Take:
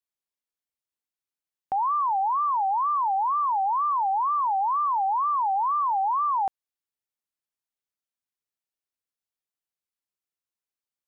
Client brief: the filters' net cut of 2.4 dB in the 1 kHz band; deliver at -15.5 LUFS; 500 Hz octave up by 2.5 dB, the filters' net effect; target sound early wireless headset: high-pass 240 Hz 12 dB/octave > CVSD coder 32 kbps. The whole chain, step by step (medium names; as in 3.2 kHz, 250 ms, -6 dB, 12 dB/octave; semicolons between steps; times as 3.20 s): high-pass 240 Hz 12 dB/octave; peaking EQ 500 Hz +8.5 dB; peaking EQ 1 kHz -5.5 dB; CVSD coder 32 kbps; trim +11.5 dB